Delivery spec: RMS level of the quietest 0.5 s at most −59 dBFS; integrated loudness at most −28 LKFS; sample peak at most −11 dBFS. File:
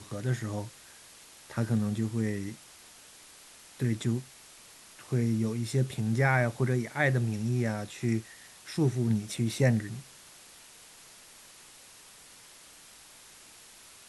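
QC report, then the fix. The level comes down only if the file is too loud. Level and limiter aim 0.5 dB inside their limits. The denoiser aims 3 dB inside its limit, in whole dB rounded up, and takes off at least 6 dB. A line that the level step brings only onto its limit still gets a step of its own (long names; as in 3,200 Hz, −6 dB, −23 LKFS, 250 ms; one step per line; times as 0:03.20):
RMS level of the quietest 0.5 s −53 dBFS: out of spec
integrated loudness −30.0 LKFS: in spec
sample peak −12.5 dBFS: in spec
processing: broadband denoise 9 dB, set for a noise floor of −53 dBFS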